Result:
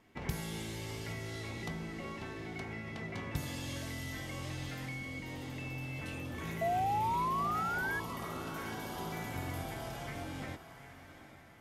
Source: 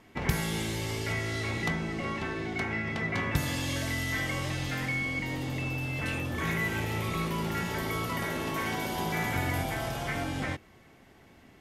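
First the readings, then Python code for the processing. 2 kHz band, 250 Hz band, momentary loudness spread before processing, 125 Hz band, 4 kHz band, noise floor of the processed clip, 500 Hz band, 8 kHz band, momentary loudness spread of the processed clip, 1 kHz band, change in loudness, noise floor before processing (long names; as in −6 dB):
−9.5 dB, −8.5 dB, 3 LU, −8.5 dB, −9.5 dB, −54 dBFS, −6.5 dB, −8.5 dB, 10 LU, −0.5 dB, −7.0 dB, −57 dBFS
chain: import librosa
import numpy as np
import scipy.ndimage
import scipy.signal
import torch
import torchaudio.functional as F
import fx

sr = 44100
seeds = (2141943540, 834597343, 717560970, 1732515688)

y = fx.spec_paint(x, sr, seeds[0], shape='rise', start_s=6.61, length_s=1.39, low_hz=660.0, high_hz=1700.0, level_db=-22.0)
y = fx.echo_diffused(y, sr, ms=815, feedback_pct=42, wet_db=-13.5)
y = fx.dynamic_eq(y, sr, hz=1700.0, q=1.1, threshold_db=-39.0, ratio=4.0, max_db=-6)
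y = y * librosa.db_to_amplitude(-8.5)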